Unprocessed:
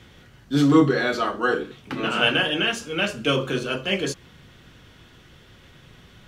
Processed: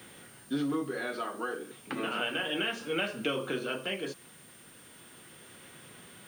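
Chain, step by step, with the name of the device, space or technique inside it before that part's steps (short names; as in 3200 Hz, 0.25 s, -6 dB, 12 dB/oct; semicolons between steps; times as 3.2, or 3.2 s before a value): medium wave at night (BPF 200–3700 Hz; compressor, threshold -28 dBFS, peak gain reduction 15.5 dB; tremolo 0.34 Hz, depth 41%; whine 9000 Hz -56 dBFS; white noise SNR 24 dB)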